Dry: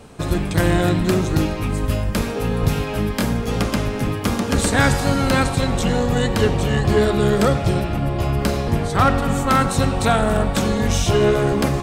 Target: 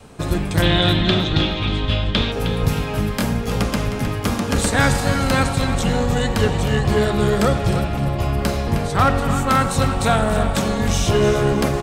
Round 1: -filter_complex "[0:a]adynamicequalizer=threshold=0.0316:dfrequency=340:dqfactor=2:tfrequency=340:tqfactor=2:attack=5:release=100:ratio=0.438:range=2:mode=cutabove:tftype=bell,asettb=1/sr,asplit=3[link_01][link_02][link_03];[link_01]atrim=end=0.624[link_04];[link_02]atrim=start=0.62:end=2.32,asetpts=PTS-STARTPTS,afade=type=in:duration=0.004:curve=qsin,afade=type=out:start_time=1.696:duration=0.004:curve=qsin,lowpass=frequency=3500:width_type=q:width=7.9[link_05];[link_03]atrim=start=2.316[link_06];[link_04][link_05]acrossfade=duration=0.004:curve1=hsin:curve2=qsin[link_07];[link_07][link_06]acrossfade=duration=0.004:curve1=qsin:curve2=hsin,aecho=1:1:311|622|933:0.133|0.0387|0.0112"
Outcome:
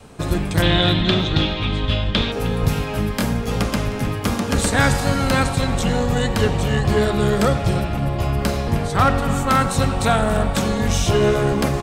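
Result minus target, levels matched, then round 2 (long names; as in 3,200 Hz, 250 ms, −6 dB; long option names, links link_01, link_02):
echo-to-direct −7 dB
-filter_complex "[0:a]adynamicequalizer=threshold=0.0316:dfrequency=340:dqfactor=2:tfrequency=340:tqfactor=2:attack=5:release=100:ratio=0.438:range=2:mode=cutabove:tftype=bell,asettb=1/sr,asplit=3[link_01][link_02][link_03];[link_01]atrim=end=0.624[link_04];[link_02]atrim=start=0.62:end=2.32,asetpts=PTS-STARTPTS,afade=type=in:duration=0.004:curve=qsin,afade=type=out:start_time=1.696:duration=0.004:curve=qsin,lowpass=frequency=3500:width_type=q:width=7.9[link_05];[link_03]atrim=start=2.316[link_06];[link_04][link_05]acrossfade=duration=0.004:curve1=hsin:curve2=qsin[link_07];[link_07][link_06]acrossfade=duration=0.004:curve1=qsin:curve2=hsin,aecho=1:1:311|622|933:0.299|0.0866|0.0251"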